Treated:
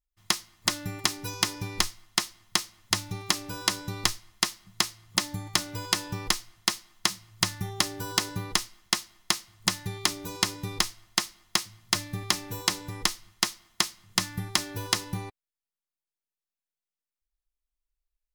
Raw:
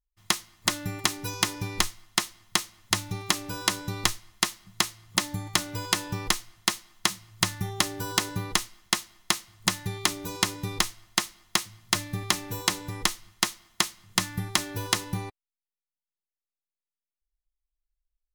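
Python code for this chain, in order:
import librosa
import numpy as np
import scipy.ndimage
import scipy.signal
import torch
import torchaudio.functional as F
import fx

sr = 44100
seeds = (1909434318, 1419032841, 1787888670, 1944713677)

y = fx.dynamic_eq(x, sr, hz=5000.0, q=2.8, threshold_db=-40.0, ratio=4.0, max_db=5)
y = F.gain(torch.from_numpy(y), -2.0).numpy()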